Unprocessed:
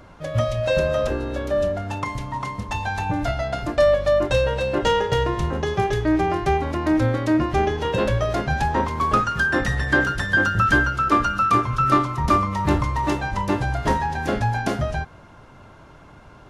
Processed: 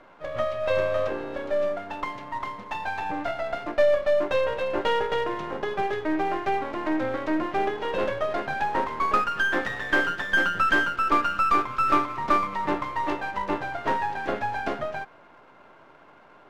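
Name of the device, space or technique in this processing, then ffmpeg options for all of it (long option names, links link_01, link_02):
crystal radio: -af "highpass=340,lowpass=2700,aeval=exprs='if(lt(val(0),0),0.447*val(0),val(0))':channel_layout=same"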